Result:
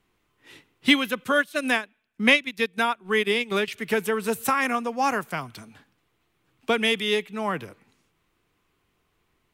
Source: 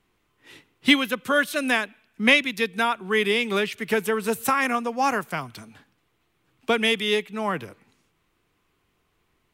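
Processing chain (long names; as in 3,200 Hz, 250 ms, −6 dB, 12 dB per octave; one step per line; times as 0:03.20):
0:01.24–0:03.68: transient designer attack +1 dB, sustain −12 dB
level −1 dB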